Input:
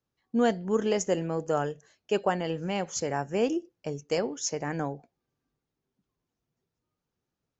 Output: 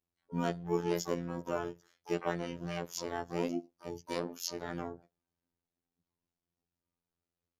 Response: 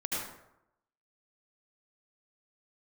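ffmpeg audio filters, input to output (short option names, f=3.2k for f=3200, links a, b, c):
-filter_complex "[0:a]asplit=4[a][b][c][d];[b]asetrate=22050,aresample=44100,atempo=2,volume=-14dB[e];[c]asetrate=35002,aresample=44100,atempo=1.25992,volume=-2dB[f];[d]asetrate=88200,aresample=44100,atempo=0.5,volume=-9dB[g];[a][e][f][g]amix=inputs=4:normalize=0,afftfilt=real='hypot(re,im)*cos(PI*b)':imag='0':win_size=2048:overlap=0.75,volume=-6.5dB"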